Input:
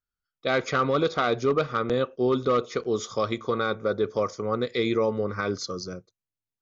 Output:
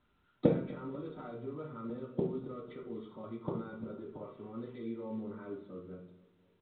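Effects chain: 4.22–4.85 switching spikes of -27 dBFS; HPF 84 Hz 6 dB/oct; high shelf 2900 Hz -5 dB; notch 670 Hz, Q 12; comb 3 ms, depth 54%; limiter -24 dBFS, peak gain reduction 11.5 dB; flipped gate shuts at -32 dBFS, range -32 dB; feedback echo 0.247 s, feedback 53%, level -20.5 dB; reverb RT60 0.45 s, pre-delay 3 ms, DRR -5 dB; gain +4 dB; µ-law 64 kbps 8000 Hz

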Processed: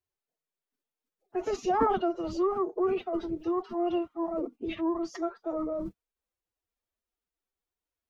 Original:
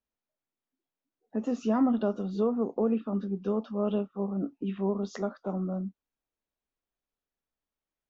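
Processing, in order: formant-preserving pitch shift +9 st

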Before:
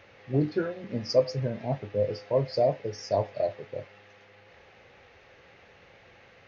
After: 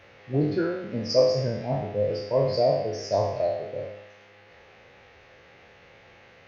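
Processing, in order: spectral trails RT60 0.87 s

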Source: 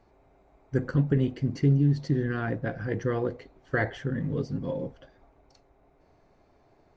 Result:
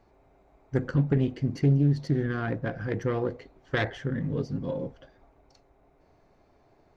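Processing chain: self-modulated delay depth 0.15 ms

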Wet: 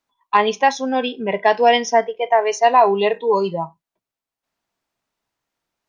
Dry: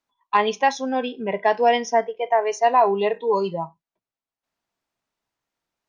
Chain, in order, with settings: 0.91–3.22 dynamic EQ 3700 Hz, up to +5 dB, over -39 dBFS, Q 0.92; gain +3.5 dB

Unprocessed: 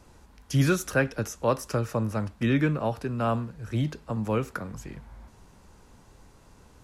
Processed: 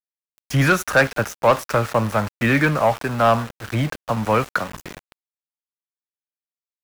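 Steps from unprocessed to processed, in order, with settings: band shelf 1200 Hz +10 dB 2.4 oct; sample leveller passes 2; sample gate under -27.5 dBFS; gain -2.5 dB

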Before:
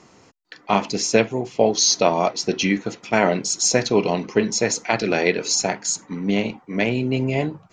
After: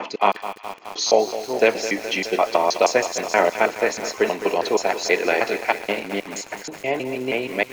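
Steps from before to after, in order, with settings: slices in reverse order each 0.159 s, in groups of 6; three-band isolator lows -21 dB, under 340 Hz, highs -14 dB, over 3700 Hz; thin delay 0.119 s, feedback 80%, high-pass 1500 Hz, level -18.5 dB; lo-fi delay 0.21 s, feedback 80%, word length 6-bit, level -12 dB; gain +2.5 dB

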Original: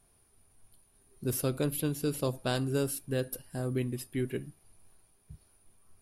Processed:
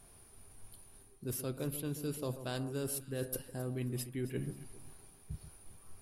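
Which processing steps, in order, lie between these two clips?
reverse; compressor 6:1, threshold -44 dBFS, peak gain reduction 17.5 dB; reverse; echo with dull and thin repeats by turns 0.134 s, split 1200 Hz, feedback 56%, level -10.5 dB; gain +7.5 dB

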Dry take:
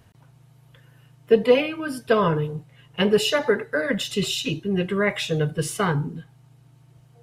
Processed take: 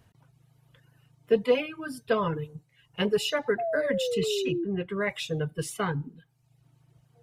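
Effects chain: 4.52–5.01 high shelf 3700 Hz -10 dB; reverb removal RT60 0.77 s; 3.58–4.65 painted sound fall 330–710 Hz -23 dBFS; gain -6 dB

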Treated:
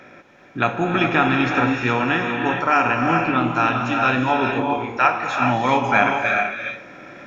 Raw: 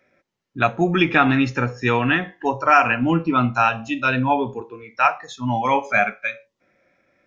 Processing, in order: per-bin compression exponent 0.6; non-linear reverb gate 0.45 s rising, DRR 2.5 dB; vocal rider 2 s; gain -4.5 dB

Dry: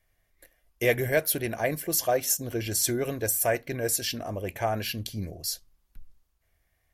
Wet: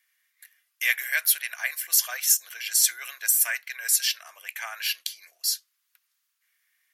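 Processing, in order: HPF 1400 Hz 24 dB/oct; gain +6 dB

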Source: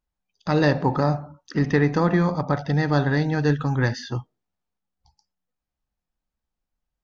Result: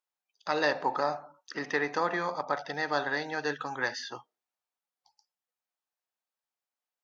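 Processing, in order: HPF 610 Hz 12 dB/oct; gain -2.5 dB

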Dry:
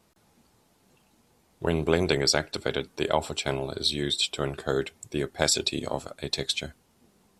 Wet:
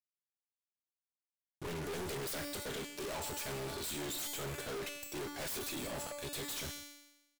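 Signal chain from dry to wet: self-modulated delay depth 0.49 ms; high shelf 6000 Hz +9.5 dB; fuzz box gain 40 dB, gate -43 dBFS; resonator 290 Hz, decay 1 s, mix 80%; soft clip -40 dBFS, distortion -6 dB; on a send: echo 0.134 s -19.5 dB; on the sum: gain +1 dB

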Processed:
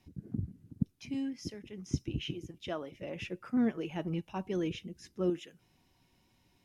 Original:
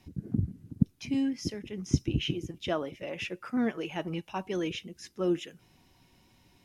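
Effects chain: 2.95–5.3 low shelf 390 Hz +10 dB; gain -7 dB

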